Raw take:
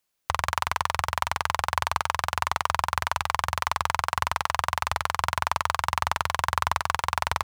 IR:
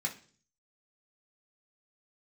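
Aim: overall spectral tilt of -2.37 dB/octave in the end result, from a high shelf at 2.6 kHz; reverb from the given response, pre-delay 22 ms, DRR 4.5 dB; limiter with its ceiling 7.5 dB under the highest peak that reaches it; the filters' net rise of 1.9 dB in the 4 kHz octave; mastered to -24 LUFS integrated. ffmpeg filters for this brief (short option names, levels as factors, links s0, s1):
-filter_complex "[0:a]highshelf=f=2600:g=-6.5,equalizer=f=4000:t=o:g=8,alimiter=limit=0.251:level=0:latency=1,asplit=2[s0][s1];[1:a]atrim=start_sample=2205,adelay=22[s2];[s1][s2]afir=irnorm=-1:irlink=0,volume=0.422[s3];[s0][s3]amix=inputs=2:normalize=0,volume=2.51"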